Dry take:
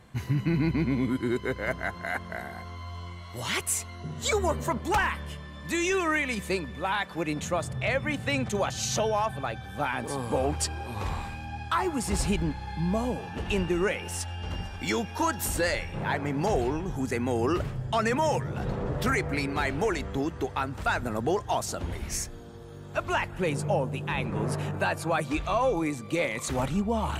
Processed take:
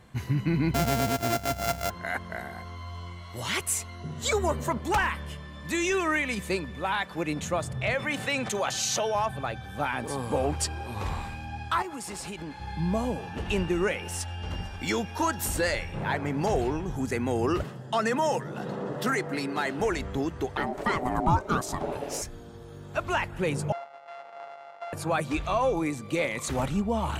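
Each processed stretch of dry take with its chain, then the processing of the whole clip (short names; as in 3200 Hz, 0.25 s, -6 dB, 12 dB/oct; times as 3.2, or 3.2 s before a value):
0.74–1.9 sample sorter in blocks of 64 samples + high shelf 10000 Hz +4.5 dB + comb 1.3 ms, depth 41%
7.94–9.15 HPF 470 Hz 6 dB/oct + fast leveller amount 50%
11.82–12.6 HPF 390 Hz 6 dB/oct + compressor 10:1, threshold -33 dBFS
17.63–19.8 HPF 160 Hz 24 dB/oct + notch 2300 Hz, Q 7.1
20.57–22.22 bell 290 Hz +8 dB 2.6 oct + ring modulator 500 Hz
23.72–24.93 sample sorter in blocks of 64 samples + ladder band-pass 860 Hz, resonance 50% + tilt shelf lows -5.5 dB, about 1200 Hz
whole clip: dry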